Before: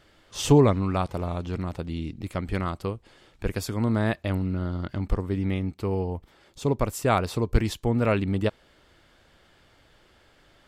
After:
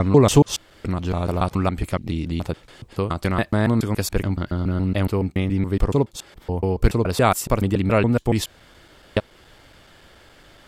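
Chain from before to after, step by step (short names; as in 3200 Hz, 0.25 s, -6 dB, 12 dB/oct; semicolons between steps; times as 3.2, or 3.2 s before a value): slices in reverse order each 0.141 s, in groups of 6; high shelf 8300 Hz +5 dB; in parallel at -1.5 dB: compressor, threshold -33 dBFS, peak gain reduction 19.5 dB; on the sum: gain +3.5 dB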